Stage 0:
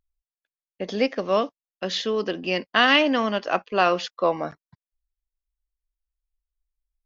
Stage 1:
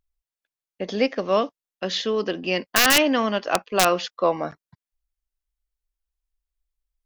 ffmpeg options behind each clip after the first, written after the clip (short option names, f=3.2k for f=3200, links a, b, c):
-af "aeval=exprs='(mod(2.11*val(0)+1,2)-1)/2.11':c=same,volume=1dB"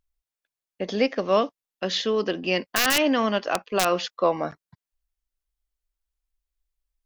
-af "alimiter=limit=-10.5dB:level=0:latency=1:release=91"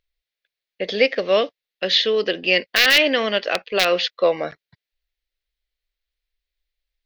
-af "equalizer=f=250:t=o:w=1:g=-4,equalizer=f=500:t=o:w=1:g=9,equalizer=f=1k:t=o:w=1:g=-7,equalizer=f=2k:t=o:w=1:g=11,equalizer=f=4k:t=o:w=1:g=12,equalizer=f=8k:t=o:w=1:g=-8,volume=-1.5dB"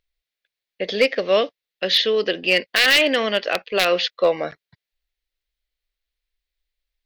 -af "asoftclip=type=hard:threshold=-8.5dB"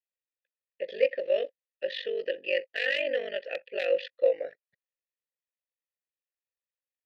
-filter_complex "[0:a]aeval=exprs='val(0)*sin(2*PI*24*n/s)':c=same,asplit=3[a][b][c];[a]bandpass=f=530:t=q:w=8,volume=0dB[d];[b]bandpass=f=1.84k:t=q:w=8,volume=-6dB[e];[c]bandpass=f=2.48k:t=q:w=8,volume=-9dB[f];[d][e][f]amix=inputs=3:normalize=0"